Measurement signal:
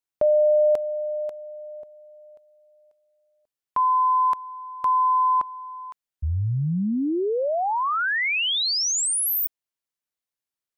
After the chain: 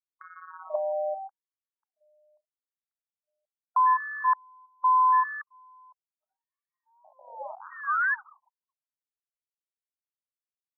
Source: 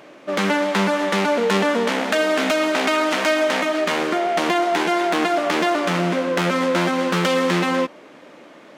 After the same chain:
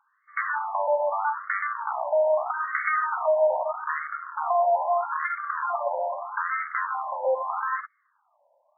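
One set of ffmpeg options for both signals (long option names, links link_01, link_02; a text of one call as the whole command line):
ffmpeg -i in.wav -af "afwtdn=0.0794,afftfilt=real='re*between(b*sr/1024,710*pow(1600/710,0.5+0.5*sin(2*PI*0.79*pts/sr))/1.41,710*pow(1600/710,0.5+0.5*sin(2*PI*0.79*pts/sr))*1.41)':imag='im*between(b*sr/1024,710*pow(1600/710,0.5+0.5*sin(2*PI*0.79*pts/sr))/1.41,710*pow(1600/710,0.5+0.5*sin(2*PI*0.79*pts/sr))*1.41)':win_size=1024:overlap=0.75" out.wav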